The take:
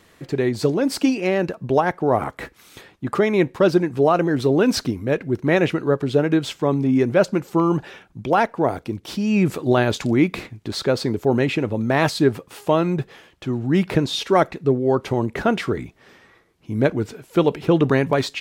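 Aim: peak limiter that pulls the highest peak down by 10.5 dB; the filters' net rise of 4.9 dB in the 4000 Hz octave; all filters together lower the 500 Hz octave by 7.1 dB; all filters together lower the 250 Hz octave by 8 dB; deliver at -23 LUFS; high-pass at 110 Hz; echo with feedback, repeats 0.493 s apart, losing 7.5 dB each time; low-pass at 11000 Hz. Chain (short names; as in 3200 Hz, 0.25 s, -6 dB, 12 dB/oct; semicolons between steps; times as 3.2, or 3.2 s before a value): HPF 110 Hz; LPF 11000 Hz; bell 250 Hz -8.5 dB; bell 500 Hz -6.5 dB; bell 4000 Hz +6 dB; limiter -16 dBFS; feedback echo 0.493 s, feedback 42%, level -7.5 dB; gain +4 dB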